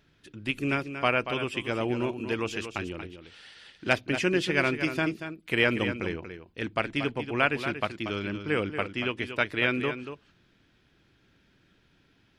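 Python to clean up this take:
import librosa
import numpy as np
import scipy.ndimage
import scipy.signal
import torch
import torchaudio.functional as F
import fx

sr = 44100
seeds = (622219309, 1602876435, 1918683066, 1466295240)

y = fx.fix_echo_inverse(x, sr, delay_ms=234, level_db=-9.5)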